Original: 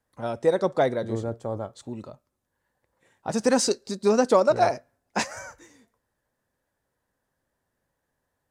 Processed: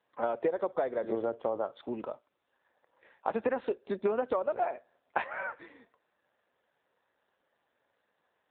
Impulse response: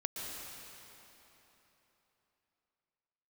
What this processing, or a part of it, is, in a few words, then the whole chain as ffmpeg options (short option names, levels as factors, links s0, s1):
voicemail: -af "highpass=400,lowpass=3100,acompressor=threshold=0.0224:ratio=12,volume=2.24" -ar 8000 -c:a libopencore_amrnb -b:a 7400